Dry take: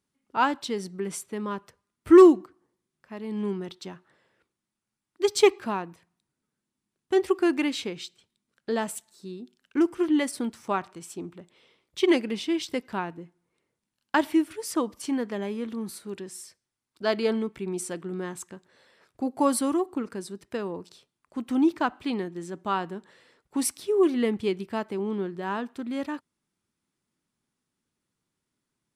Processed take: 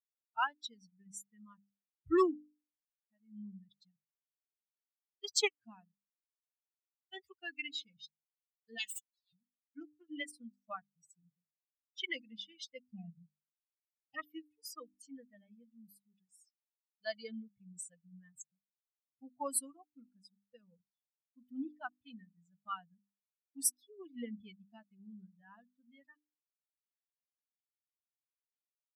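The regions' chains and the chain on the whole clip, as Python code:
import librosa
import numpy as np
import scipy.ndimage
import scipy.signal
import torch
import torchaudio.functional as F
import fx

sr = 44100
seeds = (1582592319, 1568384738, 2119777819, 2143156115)

y = fx.chain(x, sr, fx.lower_of_two(delay_ms=4.4),
    fx.highpass(hz=1300.0, slope=12),
    fx.peak_eq(hz=3200.0, db=11.0, octaves=2.5), at=(8.78, 9.33))
y = fx.chain(y, sr, fx.brickwall_bandstop(low_hz=820.0, high_hz=1800.0),
    fx.low_shelf(hz=480.0, db=6.5),
    fx.transformer_sat(knee_hz=980.0), at=(12.83, 14.23))
y = fx.bin_expand(y, sr, power=3.0)
y = fx.tone_stack(y, sr, knobs='5-5-5')
y = fx.hum_notches(y, sr, base_hz=50, count=6)
y = y * 10.0 ** (7.0 / 20.0)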